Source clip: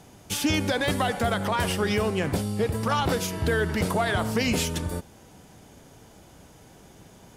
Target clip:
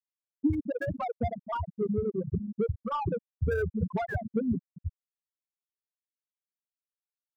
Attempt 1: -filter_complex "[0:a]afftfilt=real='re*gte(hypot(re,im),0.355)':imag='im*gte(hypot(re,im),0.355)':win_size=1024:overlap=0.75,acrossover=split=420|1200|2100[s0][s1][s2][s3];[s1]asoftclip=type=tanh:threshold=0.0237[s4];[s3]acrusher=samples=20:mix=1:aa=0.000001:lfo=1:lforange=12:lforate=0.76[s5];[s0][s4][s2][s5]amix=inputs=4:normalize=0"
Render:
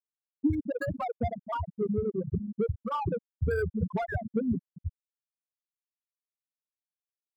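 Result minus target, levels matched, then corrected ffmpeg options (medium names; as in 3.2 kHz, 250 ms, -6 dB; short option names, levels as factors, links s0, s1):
decimation with a swept rate: distortion -12 dB
-filter_complex "[0:a]afftfilt=real='re*gte(hypot(re,im),0.355)':imag='im*gte(hypot(re,im),0.355)':win_size=1024:overlap=0.75,acrossover=split=420|1200|2100[s0][s1][s2][s3];[s1]asoftclip=type=tanh:threshold=0.0237[s4];[s3]acrusher=samples=58:mix=1:aa=0.000001:lfo=1:lforange=34.8:lforate=0.76[s5];[s0][s4][s2][s5]amix=inputs=4:normalize=0"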